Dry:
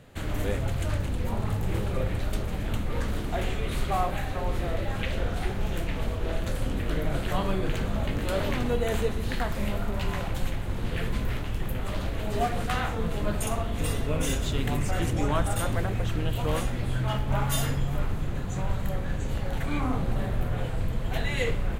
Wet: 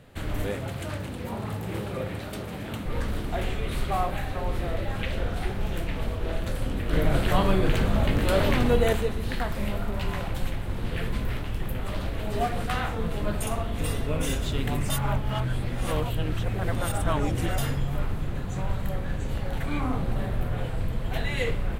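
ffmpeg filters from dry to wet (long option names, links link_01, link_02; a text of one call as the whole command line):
ffmpeg -i in.wav -filter_complex "[0:a]asettb=1/sr,asplit=3[link_01][link_02][link_03];[link_01]atrim=end=0.474[link_04];[link_02]atrim=start=0.47:end=2.86,asetpts=PTS-STARTPTS,afade=type=in:duration=0.004:curve=qsin,afade=type=out:start_time=2.386:duration=0.004:curve=qsin,highpass=120[link_05];[link_03]atrim=start=2.856[link_06];[link_04][link_05]acrossfade=duration=0.004:curve1=hsin:curve2=qsin[link_07];[link_07][link_06]acrossfade=duration=0.004:curve1=qsin:curve2=hsin,asettb=1/sr,asplit=3[link_08][link_09][link_10];[link_08]atrim=end=6.934[link_11];[link_09]atrim=start=6.93:end=8.93,asetpts=PTS-STARTPTS,afade=type=in:duration=0.004:curve=qsin,afade=type=out:start_time=1.996:duration=0.004:curve=qsin,acontrast=33[link_12];[link_10]atrim=start=8.926[link_13];[link_11][link_12]acrossfade=duration=0.004:curve1=hsin:curve2=qsin[link_14];[link_14][link_13]acrossfade=duration=0.004:curve1=qsin:curve2=hsin,asplit=3[link_15][link_16][link_17];[link_15]atrim=end=14.902[link_18];[link_16]atrim=start=14.898:end=17.582,asetpts=PTS-STARTPTS,areverse[link_19];[link_17]atrim=start=17.578[link_20];[link_18][link_19]acrossfade=duration=0.004:curve1=hsin:curve2=hsin[link_21];[link_21][link_20]acrossfade=duration=0.004:curve1=hsin:curve2=hsin,equalizer=frequency=6700:width=3.9:gain=-4.5" out.wav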